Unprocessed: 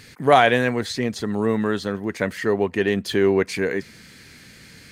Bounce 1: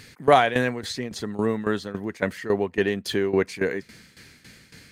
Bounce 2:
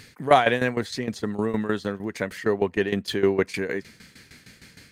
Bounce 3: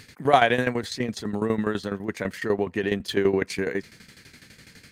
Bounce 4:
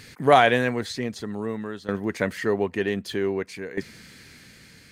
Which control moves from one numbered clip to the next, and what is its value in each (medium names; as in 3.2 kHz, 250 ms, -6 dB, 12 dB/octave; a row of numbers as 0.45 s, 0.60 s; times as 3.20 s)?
tremolo, rate: 3.6 Hz, 6.5 Hz, 12 Hz, 0.53 Hz